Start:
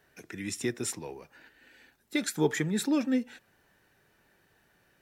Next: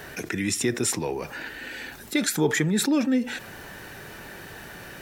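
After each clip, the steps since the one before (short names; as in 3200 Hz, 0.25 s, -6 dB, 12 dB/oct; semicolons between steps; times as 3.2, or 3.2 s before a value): fast leveller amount 50%; gain +2.5 dB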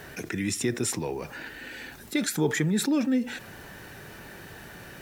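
bell 110 Hz +3.5 dB 2.9 oct; requantised 10-bit, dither triangular; gain -4 dB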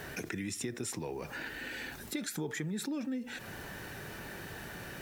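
compressor 4:1, threshold -36 dBFS, peak gain reduction 14 dB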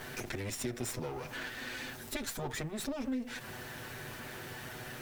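minimum comb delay 8 ms; gain +1.5 dB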